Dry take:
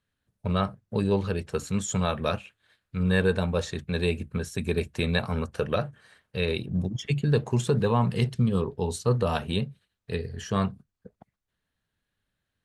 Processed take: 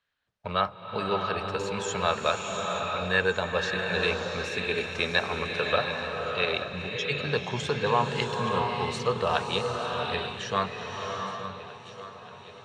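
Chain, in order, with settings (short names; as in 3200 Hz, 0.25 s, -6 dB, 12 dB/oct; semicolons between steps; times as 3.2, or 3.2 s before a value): three-band isolator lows -16 dB, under 550 Hz, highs -23 dB, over 5800 Hz; swung echo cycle 1.46 s, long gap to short 1.5:1, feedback 51%, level -15.5 dB; bloom reverb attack 0.7 s, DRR 2 dB; gain +4.5 dB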